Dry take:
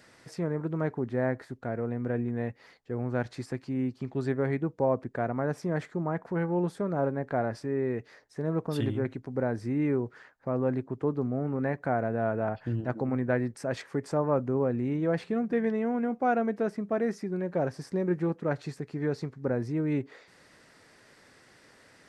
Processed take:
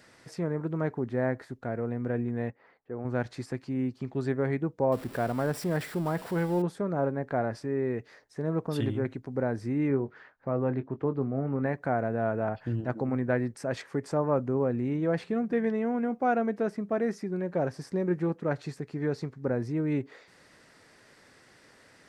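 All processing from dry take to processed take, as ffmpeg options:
ffmpeg -i in.wav -filter_complex "[0:a]asettb=1/sr,asplit=3[link_01][link_02][link_03];[link_01]atrim=end=2.504[link_04];[link_02]atrim=start=2.5:end=3.05,asetpts=PTS-STARTPTS,afade=type=in:duration=0.004:curve=qsin,afade=type=out:start_time=0.546:duration=0.004:curve=qsin,lowpass=1500,lowshelf=frequency=200:gain=-11[link_05];[link_03]atrim=start=3.046[link_06];[link_04][link_05]acrossfade=duration=0.004:curve1=hsin:curve2=qsin[link_07];[link_07][link_06]acrossfade=duration=0.004:curve1=qsin:curve2=hsin,asettb=1/sr,asplit=3[link_08][link_09][link_10];[link_08]atrim=end=4.924[link_11];[link_09]atrim=start=4.92:end=6.62,asetpts=PTS-STARTPTS,afade=type=in:duration=0.004:curve=qsin,afade=type=out:start_time=1.696:duration=0.004:curve=qsin,aeval=exprs='val(0)+0.5*0.00891*sgn(val(0))':channel_layout=same,highshelf=frequency=5200:gain=7,bandreject=frequency=6400:width=5.5[link_12];[link_10]atrim=start=6.616[link_13];[link_11][link_12]acrossfade=duration=0.004:curve1=hsin:curve2=qsin[link_14];[link_14][link_13]acrossfade=duration=0.004:curve1=qsin:curve2=hsin,asettb=1/sr,asplit=3[link_15][link_16][link_17];[link_15]atrim=end=9.884[link_18];[link_16]atrim=start=9.88:end=11.66,asetpts=PTS-STARTPTS,afade=type=in:duration=0.004:curve=qsin,afade=type=out:start_time=1.776:duration=0.004:curve=qsin,lowpass=3800,asplit=2[link_19][link_20];[link_20]adelay=22,volume=-11dB[link_21];[link_19][link_21]amix=inputs=2:normalize=0,atrim=end_sample=78498[link_22];[link_17]atrim=start=11.656[link_23];[link_18][link_22]acrossfade=duration=0.004:curve1=hsin:curve2=qsin[link_24];[link_24][link_23]acrossfade=duration=0.004:curve1=qsin:curve2=hsin" out.wav

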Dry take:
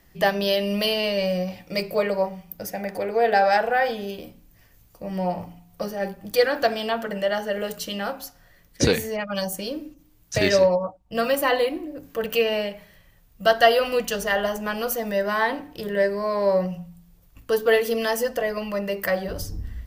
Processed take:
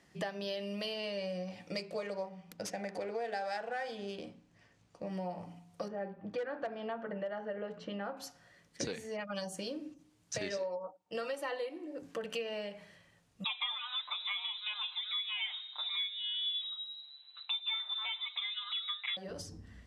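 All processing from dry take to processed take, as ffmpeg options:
ffmpeg -i in.wav -filter_complex "[0:a]asettb=1/sr,asplit=3[link_01][link_02][link_03];[link_01]atrim=end=1.764[link_04];[link_02]atrim=start=1.76:end=5.12,asetpts=PTS-STARTPTS,afade=type=in:duration=0.004:curve=qsin,afade=type=out:start_time=3.356:duration=0.004:curve=qsin,highshelf=frequency=5100:gain=11.5,adynamicsmooth=sensitivity=7.5:basefreq=3400[link_05];[link_03]atrim=start=5.116[link_06];[link_04][link_05]acrossfade=duration=0.004:curve1=hsin:curve2=qsin[link_07];[link_07][link_06]acrossfade=duration=0.004:curve1=qsin:curve2=hsin,asettb=1/sr,asplit=3[link_08][link_09][link_10];[link_08]atrim=end=5.884[link_11];[link_09]atrim=start=5.88:end=8.17,asetpts=PTS-STARTPTS,afade=type=in:duration=0.004:curve=qsin,afade=type=out:start_time=2.286:duration=0.004:curve=qsin,lowpass=1700,volume=14.5dB,asoftclip=hard,volume=-14.5dB[link_12];[link_10]atrim=start=8.166[link_13];[link_11][link_12]acrossfade=duration=0.004:curve1=hsin:curve2=qsin[link_14];[link_14][link_13]acrossfade=duration=0.004:curve1=qsin:curve2=hsin,asettb=1/sr,asplit=3[link_15][link_16][link_17];[link_15]atrim=end=10.574[link_18];[link_16]atrim=start=10.57:end=12.02,asetpts=PTS-STARTPTS,afade=type=in:duration=0.004:curve=qsin,afade=type=out:start_time=1.446:duration=0.004:curve=qsin,highpass=240,aecho=1:1:2.2:0.33,atrim=end_sample=63945[link_19];[link_17]atrim=start=12.016[link_20];[link_18][link_19]acrossfade=duration=0.004:curve1=hsin:curve2=qsin[link_21];[link_21][link_20]acrossfade=duration=0.004:curve1=qsin:curve2=hsin,asettb=1/sr,asplit=3[link_22][link_23][link_24];[link_22]atrim=end=13.444[link_25];[link_23]atrim=start=13.44:end=19.17,asetpts=PTS-STARTPTS,afade=type=in:duration=0.004:curve=qsin,afade=type=out:start_time=5.726:duration=0.004:curve=qsin,aecho=1:1:6.8:0.93,atrim=end_sample=252693,lowpass=frequency=3400:width_type=q:width=0.5098,lowpass=frequency=3400:width_type=q:width=0.6013,lowpass=frequency=3400:width_type=q:width=0.9,lowpass=frequency=3400:width_type=q:width=2.563,afreqshift=-4000,lowshelf=frequency=510:width_type=q:width=1.5:gain=-14[link_26];[link_24]atrim=start=19.166[link_27];[link_25][link_26]acrossfade=duration=0.004:curve1=hsin:curve2=qsin[link_28];[link_28][link_27]acrossfade=duration=0.004:curve1=qsin:curve2=hsin,lowpass=frequency=9200:width=0.5412,lowpass=frequency=9200:width=1.3066,acompressor=threshold=-32dB:ratio=5,highpass=130,volume=-4.5dB" out.wav

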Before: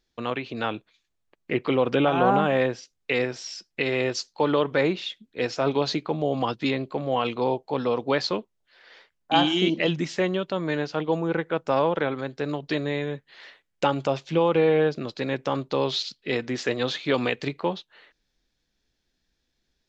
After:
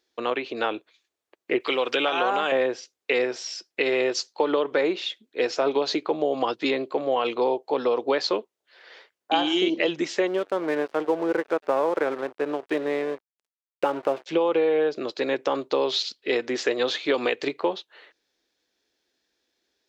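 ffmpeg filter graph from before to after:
ffmpeg -i in.wav -filter_complex "[0:a]asettb=1/sr,asplit=3[link_01][link_02][link_03];[link_01]atrim=end=1.604[link_04];[link_02]atrim=start=1.6:end=2.52,asetpts=PTS-STARTPTS,afade=type=in:duration=0.004:curve=qsin,afade=type=out:start_time=0.916:duration=0.004:curve=qsin,highpass=48,tiltshelf=frequency=1300:gain=-9[link_05];[link_03]atrim=start=2.516[link_06];[link_04][link_05]acrossfade=duration=0.004:curve1=hsin:curve2=qsin[link_07];[link_07][link_06]acrossfade=duration=0.004:curve1=qsin:curve2=hsin,asettb=1/sr,asplit=3[link_08][link_09][link_10];[link_08]atrim=end=10.274[link_11];[link_09]atrim=start=10.27:end=14.26,asetpts=PTS-STARTPTS,afade=type=in:duration=0.004:curve=qsin,afade=type=out:start_time=3.986:duration=0.004:curve=qsin,lowpass=2100,asplit=5[link_12][link_13][link_14][link_15][link_16];[link_13]adelay=97,afreqshift=100,volume=-21dB[link_17];[link_14]adelay=194,afreqshift=200,volume=-26.5dB[link_18];[link_15]adelay=291,afreqshift=300,volume=-32dB[link_19];[link_16]adelay=388,afreqshift=400,volume=-37.5dB[link_20];[link_12][link_17][link_18][link_19][link_20]amix=inputs=5:normalize=0,atrim=end_sample=175959,aeval=exprs='sgn(val(0))*max(abs(val(0))-0.0106,0)':channel_layout=same[link_21];[link_10]atrim=start=14.256[link_22];[link_11][link_21]acrossfade=duration=0.004:curve1=hsin:curve2=qsin[link_23];[link_23][link_22]acrossfade=duration=0.004:curve1=qsin:curve2=hsin,highpass=78,lowshelf=frequency=240:width_type=q:width=1.5:gain=-13.5,acompressor=threshold=-21dB:ratio=6,volume=2.5dB" out.wav

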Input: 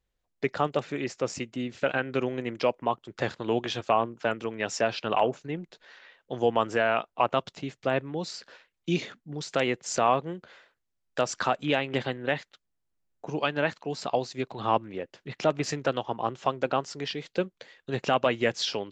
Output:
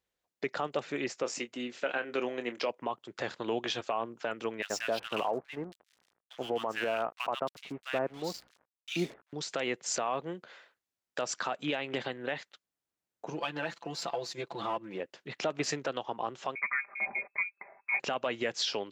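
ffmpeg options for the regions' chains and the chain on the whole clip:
ffmpeg -i in.wav -filter_complex "[0:a]asettb=1/sr,asplit=3[link_01][link_02][link_03];[link_01]atrim=end=1.234[link_04];[link_02]atrim=start=1.23:end=2.7,asetpts=PTS-STARTPTS,afade=type=in:duration=0.004:curve=qsin,afade=type=out:start_time=1.466:duration=0.004:curve=qsin,highpass=240,asplit=2[link_05][link_06];[link_06]adelay=25,volume=-11dB[link_07];[link_05][link_07]amix=inputs=2:normalize=0,atrim=end_sample=64827[link_08];[link_03]atrim=start=2.696[link_09];[link_04][link_08]acrossfade=duration=0.004:curve1=hsin:curve2=qsin[link_10];[link_10][link_09]acrossfade=duration=0.004:curve1=qsin:curve2=hsin,asettb=1/sr,asplit=3[link_11][link_12][link_13];[link_11]atrim=end=4.624[link_14];[link_12]atrim=start=4.62:end=9.33,asetpts=PTS-STARTPTS,afade=type=in:duration=0.004:curve=qsin,afade=type=out:start_time=4.706:duration=0.004:curve=qsin,aeval=exprs='val(0)+0.00178*(sin(2*PI*60*n/s)+sin(2*PI*2*60*n/s)/2+sin(2*PI*3*60*n/s)/3+sin(2*PI*4*60*n/s)/4+sin(2*PI*5*60*n/s)/5)':channel_layout=same,aeval=exprs='sgn(val(0))*max(abs(val(0))-0.00631,0)':channel_layout=same,acrossover=split=1500[link_15][link_16];[link_15]adelay=80[link_17];[link_17][link_16]amix=inputs=2:normalize=0,atrim=end_sample=207711[link_18];[link_13]atrim=start=9.326[link_19];[link_14][link_18]acrossfade=duration=0.004:curve1=hsin:curve2=qsin[link_20];[link_20][link_19]acrossfade=duration=0.004:curve1=qsin:curve2=hsin,asettb=1/sr,asplit=3[link_21][link_22][link_23];[link_21]atrim=end=13.324[link_24];[link_22]atrim=start=13.32:end=15,asetpts=PTS-STARTPTS,afade=type=in:duration=0.004:curve=qsin,afade=type=out:start_time=1.676:duration=0.004:curve=qsin,aeval=exprs='if(lt(val(0),0),0.708*val(0),val(0))':channel_layout=same,aecho=1:1:5.9:0.84,atrim=end_sample=74088,acompressor=threshold=-30dB:ratio=3:attack=3.2:release=140:knee=1:detection=peak[link_25];[link_23]atrim=start=14.996[link_26];[link_24][link_25]acrossfade=duration=0.004:curve1=hsin:curve2=qsin[link_27];[link_27][link_26]acrossfade=duration=0.004:curve1=qsin:curve2=hsin,asettb=1/sr,asplit=3[link_28][link_29][link_30];[link_28]atrim=end=16.554[link_31];[link_29]atrim=start=16.55:end=18,asetpts=PTS-STARTPTS,afade=type=in:duration=0.004:curve=qsin,afade=type=out:start_time=1.446:duration=0.004:curve=qsin,aecho=1:1:5:0.7,atrim=end_sample=63945,lowpass=frequency=2200:width_type=q:width=0.5098,lowpass=frequency=2200:width_type=q:width=0.6013,lowpass=frequency=2200:width_type=q:width=0.9,lowpass=frequency=2200:width_type=q:width=2.563,afreqshift=-2600[link_32];[link_30]atrim=start=17.996[link_33];[link_31][link_32]acrossfade=duration=0.004:curve1=hsin:curve2=qsin[link_34];[link_34][link_33]acrossfade=duration=0.004:curve1=qsin:curve2=hsin,highpass=frequency=320:poles=1,alimiter=limit=-21dB:level=0:latency=1:release=113" out.wav

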